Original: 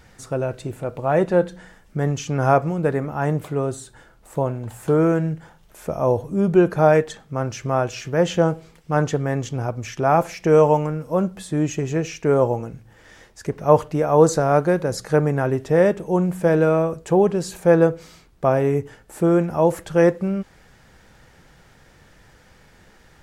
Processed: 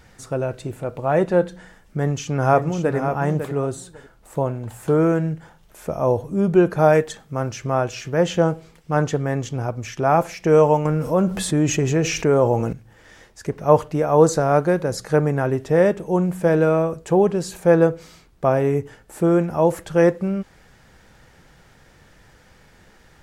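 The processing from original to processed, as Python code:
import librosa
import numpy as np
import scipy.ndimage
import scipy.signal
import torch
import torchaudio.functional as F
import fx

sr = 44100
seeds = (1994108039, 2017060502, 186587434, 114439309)

y = fx.echo_throw(x, sr, start_s=1.98, length_s=0.98, ms=550, feedback_pct=15, wet_db=-8.0)
y = fx.high_shelf(y, sr, hz=8000.0, db=7.5, at=(6.79, 7.5))
y = fx.env_flatten(y, sr, amount_pct=50, at=(10.85, 12.73))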